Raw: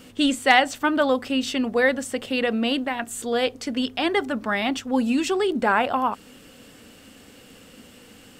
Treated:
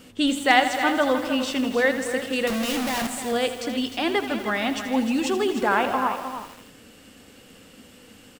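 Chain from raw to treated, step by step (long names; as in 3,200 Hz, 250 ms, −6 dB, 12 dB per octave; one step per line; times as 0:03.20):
0:02.47–0:03.07: sign of each sample alone
single-tap delay 305 ms −10 dB
feedback echo at a low word length 81 ms, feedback 80%, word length 6 bits, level −11 dB
level −1.5 dB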